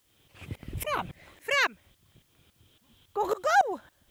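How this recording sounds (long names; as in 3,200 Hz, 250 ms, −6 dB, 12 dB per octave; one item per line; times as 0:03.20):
tremolo saw up 3.6 Hz, depth 95%
a quantiser's noise floor 12 bits, dither triangular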